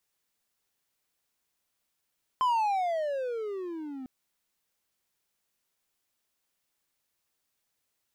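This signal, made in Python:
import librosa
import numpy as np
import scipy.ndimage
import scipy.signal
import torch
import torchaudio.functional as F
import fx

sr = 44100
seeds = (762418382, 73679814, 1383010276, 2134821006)

y = fx.riser_tone(sr, length_s=1.65, level_db=-20.0, wave='triangle', hz=1040.0, rise_st=-24.5, swell_db=-15)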